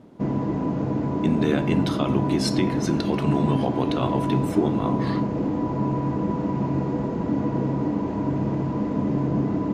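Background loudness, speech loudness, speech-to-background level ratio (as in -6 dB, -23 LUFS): -25.0 LUFS, -26.5 LUFS, -1.5 dB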